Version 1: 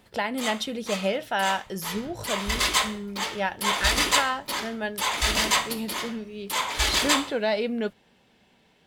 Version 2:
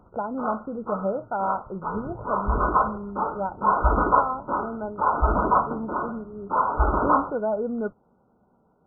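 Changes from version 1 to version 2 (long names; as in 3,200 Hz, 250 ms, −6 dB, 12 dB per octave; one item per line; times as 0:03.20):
background +8.0 dB
master: add linear-phase brick-wall low-pass 1,500 Hz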